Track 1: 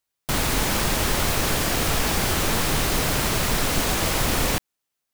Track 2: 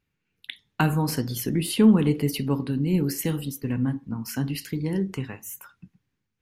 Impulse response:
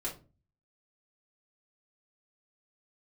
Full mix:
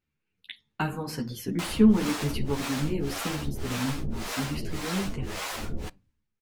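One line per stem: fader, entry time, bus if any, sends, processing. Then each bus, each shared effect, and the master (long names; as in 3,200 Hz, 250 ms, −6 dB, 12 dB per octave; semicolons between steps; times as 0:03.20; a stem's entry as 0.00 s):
−3.0 dB, 1.30 s, send −21.5 dB, brickwall limiter −13 dBFS, peak gain reduction 5 dB; two-band tremolo in antiphase 1.8 Hz, depth 100%, crossover 440 Hz
−1.5 dB, 0.00 s, no send, no processing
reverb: on, RT60 0.35 s, pre-delay 3 ms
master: high-shelf EQ 11,000 Hz −12 dB; string-ensemble chorus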